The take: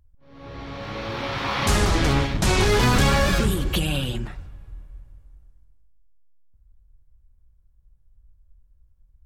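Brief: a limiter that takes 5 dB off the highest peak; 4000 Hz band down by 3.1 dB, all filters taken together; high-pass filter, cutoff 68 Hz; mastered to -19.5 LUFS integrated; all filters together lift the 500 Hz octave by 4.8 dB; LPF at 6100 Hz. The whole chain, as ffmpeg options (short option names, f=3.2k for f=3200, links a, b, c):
-af "highpass=68,lowpass=6.1k,equalizer=f=500:t=o:g=6,equalizer=f=4k:t=o:g=-3.5,volume=3.5dB,alimiter=limit=-8dB:level=0:latency=1"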